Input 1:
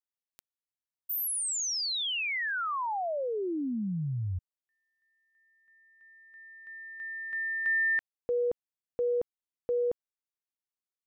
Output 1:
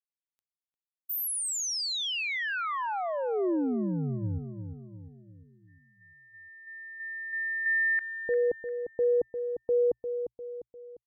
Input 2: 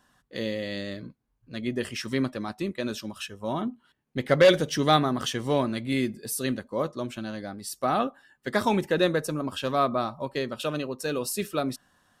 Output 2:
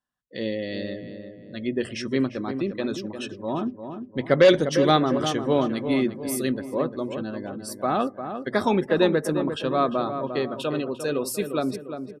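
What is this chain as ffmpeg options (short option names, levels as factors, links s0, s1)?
-filter_complex "[0:a]bandreject=f=60:t=h:w=6,bandreject=f=120:t=h:w=6,afftdn=nr=24:nf=-45,adynamicequalizer=threshold=0.0158:dfrequency=350:dqfactor=1.3:tfrequency=350:tqfactor=1.3:attack=5:release=100:ratio=0.417:range=2.5:mode=boostabove:tftype=bell,asplit=2[s0][s1];[s1]adelay=350,lowpass=f=1600:p=1,volume=0.398,asplit=2[s2][s3];[s3]adelay=350,lowpass=f=1600:p=1,volume=0.48,asplit=2[s4][s5];[s5]adelay=350,lowpass=f=1600:p=1,volume=0.48,asplit=2[s6][s7];[s7]adelay=350,lowpass=f=1600:p=1,volume=0.48,asplit=2[s8][s9];[s9]adelay=350,lowpass=f=1600:p=1,volume=0.48,asplit=2[s10][s11];[s11]adelay=350,lowpass=f=1600:p=1,volume=0.48[s12];[s2][s4][s6][s8][s10][s12]amix=inputs=6:normalize=0[s13];[s0][s13]amix=inputs=2:normalize=0"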